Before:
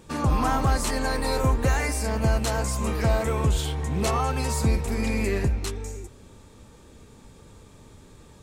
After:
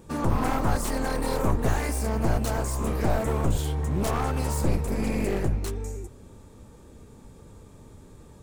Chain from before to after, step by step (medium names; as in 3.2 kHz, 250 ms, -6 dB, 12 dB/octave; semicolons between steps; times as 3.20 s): one-sided wavefolder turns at -25 dBFS; peaking EQ 3.4 kHz -8 dB 2.7 oct; trim +1.5 dB